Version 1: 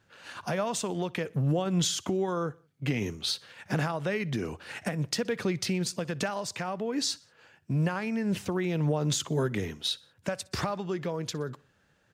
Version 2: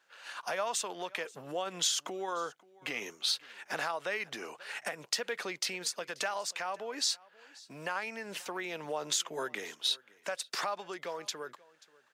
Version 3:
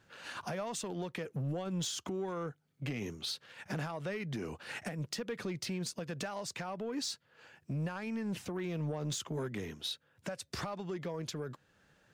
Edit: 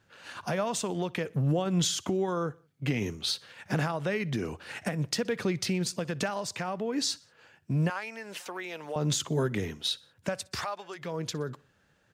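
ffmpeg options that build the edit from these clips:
-filter_complex "[1:a]asplit=2[s0][s1];[0:a]asplit=3[s2][s3][s4];[s2]atrim=end=7.902[s5];[s0]atrim=start=7.898:end=8.962[s6];[s3]atrim=start=8.958:end=10.68[s7];[s1]atrim=start=10.44:end=11.17[s8];[s4]atrim=start=10.93[s9];[s5][s6]acrossfade=d=0.004:c1=hsin:c2=hsin[s10];[s10][s7]acrossfade=d=0.004:c1=hsin:c2=hsin[s11];[s11][s8]acrossfade=d=0.24:c1=tri:c2=tri[s12];[s12][s9]acrossfade=d=0.24:c1=tri:c2=tri"

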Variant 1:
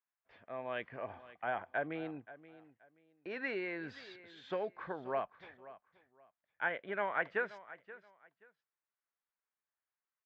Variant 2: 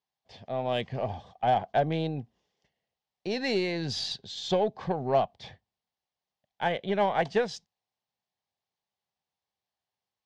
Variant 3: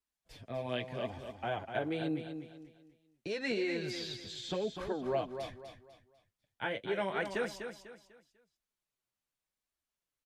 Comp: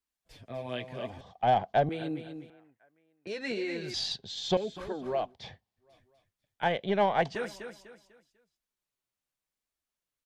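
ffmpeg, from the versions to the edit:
-filter_complex "[1:a]asplit=4[s0][s1][s2][s3];[2:a]asplit=6[s4][s5][s6][s7][s8][s9];[s4]atrim=end=1.212[s10];[s0]atrim=start=1.208:end=1.892[s11];[s5]atrim=start=1.888:end=2.502[s12];[0:a]atrim=start=2.498:end=3.272[s13];[s6]atrim=start=3.268:end=3.942[s14];[s1]atrim=start=3.938:end=4.572[s15];[s7]atrim=start=4.568:end=5.36[s16];[s2]atrim=start=5.12:end=6[s17];[s8]atrim=start=5.76:end=6.632[s18];[s3]atrim=start=6.628:end=7.352[s19];[s9]atrim=start=7.348[s20];[s10][s11]acrossfade=d=0.004:c1=hsin:c2=hsin[s21];[s21][s12]acrossfade=d=0.004:c1=hsin:c2=hsin[s22];[s22][s13]acrossfade=d=0.004:c1=hsin:c2=hsin[s23];[s23][s14]acrossfade=d=0.004:c1=hsin:c2=hsin[s24];[s24][s15]acrossfade=d=0.004:c1=hsin:c2=hsin[s25];[s25][s16]acrossfade=d=0.004:c1=hsin:c2=hsin[s26];[s26][s17]acrossfade=d=0.24:c1=tri:c2=tri[s27];[s27][s18]acrossfade=d=0.24:c1=tri:c2=tri[s28];[s28][s19]acrossfade=d=0.004:c1=hsin:c2=hsin[s29];[s29][s20]acrossfade=d=0.004:c1=hsin:c2=hsin"

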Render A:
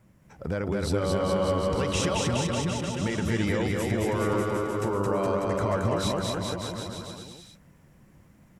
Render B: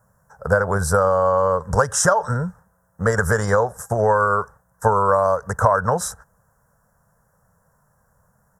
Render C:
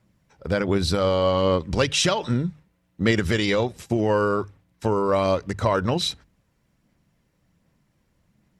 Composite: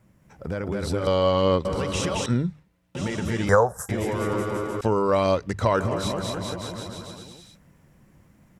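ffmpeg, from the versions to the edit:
-filter_complex "[2:a]asplit=3[s0][s1][s2];[0:a]asplit=5[s3][s4][s5][s6][s7];[s3]atrim=end=1.072[s8];[s0]atrim=start=1.068:end=1.652[s9];[s4]atrim=start=1.648:end=2.262[s10];[s1]atrim=start=2.258:end=2.952[s11];[s5]atrim=start=2.948:end=3.492[s12];[1:a]atrim=start=3.488:end=3.892[s13];[s6]atrim=start=3.888:end=4.812[s14];[s2]atrim=start=4.808:end=5.802[s15];[s7]atrim=start=5.798[s16];[s8][s9]acrossfade=d=0.004:c1=hsin:c2=hsin[s17];[s17][s10]acrossfade=d=0.004:c1=hsin:c2=hsin[s18];[s18][s11]acrossfade=d=0.004:c1=hsin:c2=hsin[s19];[s19][s12]acrossfade=d=0.004:c1=hsin:c2=hsin[s20];[s20][s13]acrossfade=d=0.004:c1=hsin:c2=hsin[s21];[s21][s14]acrossfade=d=0.004:c1=hsin:c2=hsin[s22];[s22][s15]acrossfade=d=0.004:c1=hsin:c2=hsin[s23];[s23][s16]acrossfade=d=0.004:c1=hsin:c2=hsin"

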